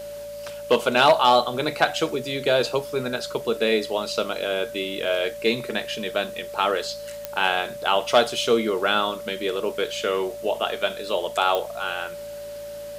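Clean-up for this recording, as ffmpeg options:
ffmpeg -i in.wav -af "adeclick=threshold=4,bandreject=frequency=55.5:width_type=h:width=4,bandreject=frequency=111:width_type=h:width=4,bandreject=frequency=166.5:width_type=h:width=4,bandreject=frequency=222:width_type=h:width=4,bandreject=frequency=580:width=30,afwtdn=0.004" out.wav

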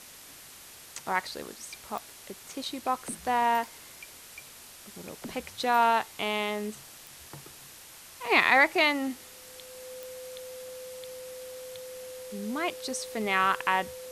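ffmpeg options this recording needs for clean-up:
ffmpeg -i in.wav -af "adeclick=threshold=4,bandreject=frequency=510:width=30,afwtdn=0.0045" out.wav

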